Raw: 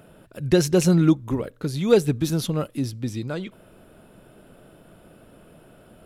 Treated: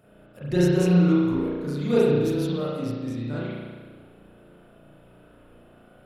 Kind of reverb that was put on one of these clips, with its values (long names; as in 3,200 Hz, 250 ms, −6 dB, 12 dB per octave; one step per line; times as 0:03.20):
spring reverb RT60 1.5 s, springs 34 ms, chirp 35 ms, DRR −9 dB
level −11 dB